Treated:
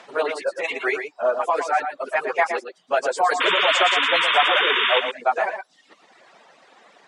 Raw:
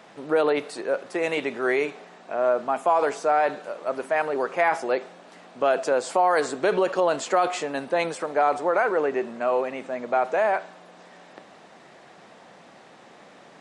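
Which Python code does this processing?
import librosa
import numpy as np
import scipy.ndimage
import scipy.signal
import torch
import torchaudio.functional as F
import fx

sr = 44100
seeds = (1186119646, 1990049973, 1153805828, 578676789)

p1 = fx.dereverb_blind(x, sr, rt60_s=1.7)
p2 = fx.weighting(p1, sr, curve='A')
p3 = fx.stretch_vocoder_free(p2, sr, factor=0.52)
p4 = fx.dereverb_blind(p3, sr, rt60_s=0.84)
p5 = fx.spec_paint(p4, sr, seeds[0], shape='noise', start_s=3.4, length_s=1.6, low_hz=930.0, high_hz=3700.0, level_db=-28.0)
p6 = p5 + fx.echo_single(p5, sr, ms=116, db=-8.0, dry=0)
y = F.gain(torch.from_numpy(p6), 7.0).numpy()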